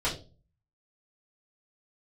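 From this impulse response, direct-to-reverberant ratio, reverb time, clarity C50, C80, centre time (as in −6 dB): −7.0 dB, 0.35 s, 10.0 dB, 14.5 dB, 22 ms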